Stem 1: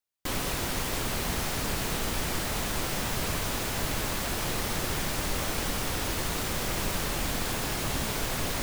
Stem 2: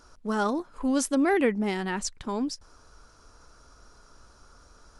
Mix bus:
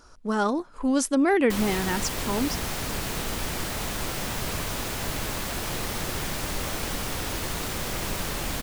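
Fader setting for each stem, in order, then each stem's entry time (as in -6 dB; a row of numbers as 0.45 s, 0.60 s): 0.0 dB, +2.0 dB; 1.25 s, 0.00 s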